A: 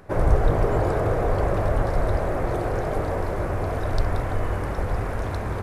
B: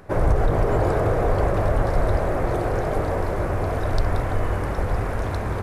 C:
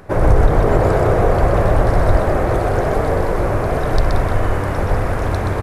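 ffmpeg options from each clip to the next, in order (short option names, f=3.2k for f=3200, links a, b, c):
-af "alimiter=level_in=10.5dB:limit=-1dB:release=50:level=0:latency=1,volume=-8.5dB"
-af "aecho=1:1:125:0.631,volume=5dB"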